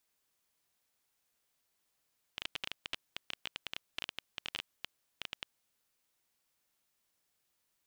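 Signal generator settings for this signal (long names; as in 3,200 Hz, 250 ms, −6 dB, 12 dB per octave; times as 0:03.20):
Geiger counter clicks 13 per second −20 dBFS 3.13 s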